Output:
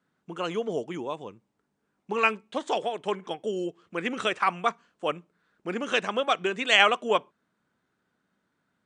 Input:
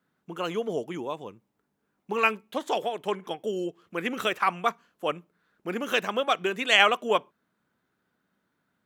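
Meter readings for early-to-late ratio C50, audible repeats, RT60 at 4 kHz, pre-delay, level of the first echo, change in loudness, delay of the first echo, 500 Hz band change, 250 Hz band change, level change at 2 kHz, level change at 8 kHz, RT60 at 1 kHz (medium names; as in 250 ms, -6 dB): no reverb, no echo, no reverb, no reverb, no echo, 0.0 dB, no echo, 0.0 dB, 0.0 dB, 0.0 dB, 0.0 dB, no reverb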